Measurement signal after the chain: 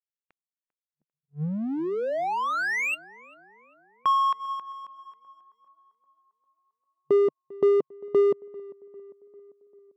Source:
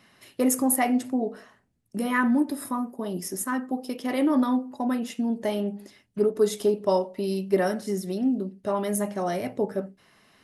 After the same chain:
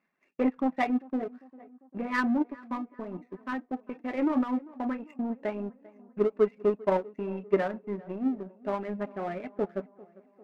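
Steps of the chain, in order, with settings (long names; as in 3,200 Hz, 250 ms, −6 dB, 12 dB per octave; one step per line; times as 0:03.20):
brick-wall band-pass 150–2,800 Hz
reverb reduction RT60 0.53 s
power curve on the samples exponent 1.4
tape delay 397 ms, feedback 63%, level −20 dB, low-pass 1,600 Hz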